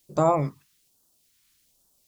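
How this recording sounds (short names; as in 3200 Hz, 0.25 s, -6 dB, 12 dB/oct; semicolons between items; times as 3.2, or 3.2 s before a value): a quantiser's noise floor 12-bit, dither triangular; phasing stages 2, 1.2 Hz, lowest notch 560–2100 Hz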